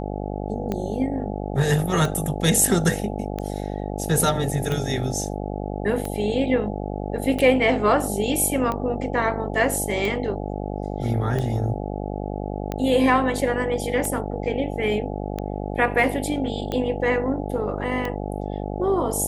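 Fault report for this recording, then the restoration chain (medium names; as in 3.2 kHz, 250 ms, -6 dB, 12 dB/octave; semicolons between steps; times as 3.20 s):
buzz 50 Hz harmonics 17 -29 dBFS
tick 45 rpm -14 dBFS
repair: de-click; de-hum 50 Hz, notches 17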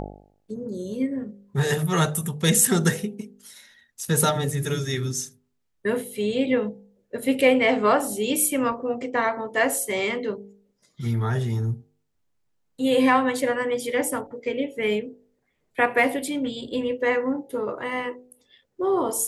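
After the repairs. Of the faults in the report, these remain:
nothing left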